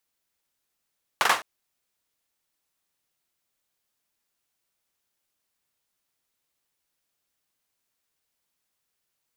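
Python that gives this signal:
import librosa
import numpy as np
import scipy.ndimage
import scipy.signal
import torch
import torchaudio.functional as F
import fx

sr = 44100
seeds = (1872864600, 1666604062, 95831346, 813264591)

y = fx.drum_clap(sr, seeds[0], length_s=0.21, bursts=3, spacing_ms=42, hz=1100.0, decay_s=0.28)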